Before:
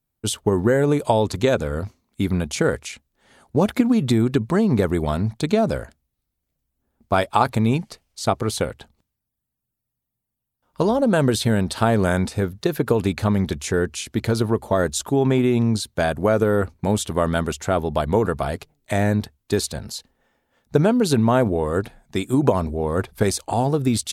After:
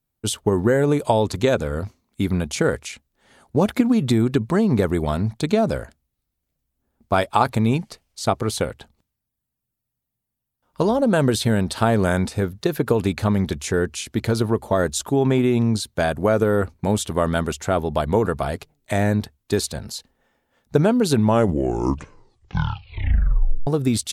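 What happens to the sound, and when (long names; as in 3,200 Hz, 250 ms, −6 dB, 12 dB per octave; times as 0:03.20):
0:21.13: tape stop 2.54 s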